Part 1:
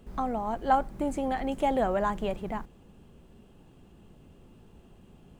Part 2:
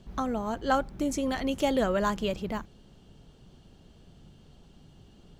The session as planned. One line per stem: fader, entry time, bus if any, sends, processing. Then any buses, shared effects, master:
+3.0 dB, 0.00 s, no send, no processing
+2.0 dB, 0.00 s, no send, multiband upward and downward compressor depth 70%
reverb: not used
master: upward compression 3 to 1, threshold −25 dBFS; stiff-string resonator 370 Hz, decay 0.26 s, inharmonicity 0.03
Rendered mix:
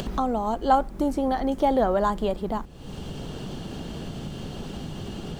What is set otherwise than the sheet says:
stem 2 +2.0 dB → −5.0 dB
master: missing stiff-string resonator 370 Hz, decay 0.26 s, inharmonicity 0.03

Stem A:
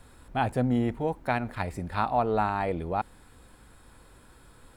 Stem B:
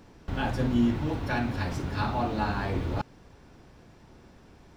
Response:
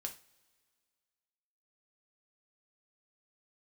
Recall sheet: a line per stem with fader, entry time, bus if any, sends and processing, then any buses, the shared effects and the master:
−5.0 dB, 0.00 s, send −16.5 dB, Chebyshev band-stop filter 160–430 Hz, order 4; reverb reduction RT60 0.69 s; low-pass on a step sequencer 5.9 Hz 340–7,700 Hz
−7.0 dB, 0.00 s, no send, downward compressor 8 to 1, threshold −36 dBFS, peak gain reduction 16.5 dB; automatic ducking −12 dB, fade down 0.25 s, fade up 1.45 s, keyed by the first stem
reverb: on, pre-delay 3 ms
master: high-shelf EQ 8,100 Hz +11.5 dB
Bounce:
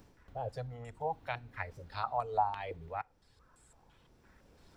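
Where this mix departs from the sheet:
stem A −5.0 dB → −12.0 dB
stem B: polarity flipped

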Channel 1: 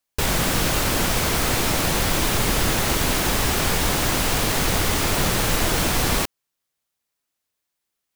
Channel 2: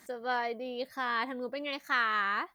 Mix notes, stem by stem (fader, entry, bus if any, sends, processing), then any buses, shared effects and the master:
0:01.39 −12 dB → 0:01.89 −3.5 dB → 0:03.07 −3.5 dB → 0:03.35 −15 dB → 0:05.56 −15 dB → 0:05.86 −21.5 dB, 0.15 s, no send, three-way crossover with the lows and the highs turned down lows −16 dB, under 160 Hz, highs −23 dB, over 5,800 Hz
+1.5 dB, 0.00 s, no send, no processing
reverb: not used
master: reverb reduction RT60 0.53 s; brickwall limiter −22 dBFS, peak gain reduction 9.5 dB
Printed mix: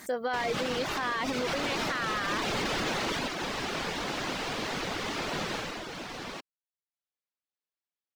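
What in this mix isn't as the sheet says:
stem 1 −12.0 dB → −4.5 dB
stem 2 +1.5 dB → +10.0 dB

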